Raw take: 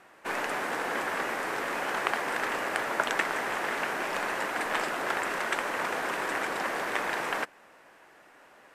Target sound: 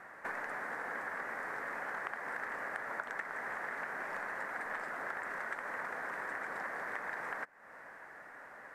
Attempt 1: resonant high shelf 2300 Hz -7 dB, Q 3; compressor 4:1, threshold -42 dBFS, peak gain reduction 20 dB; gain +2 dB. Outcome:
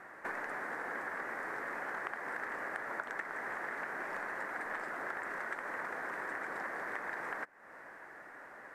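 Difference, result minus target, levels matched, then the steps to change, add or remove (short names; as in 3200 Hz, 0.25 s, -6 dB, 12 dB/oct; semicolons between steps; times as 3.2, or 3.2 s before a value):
250 Hz band +3.0 dB
add after compressor: bell 340 Hz -5.5 dB 0.54 oct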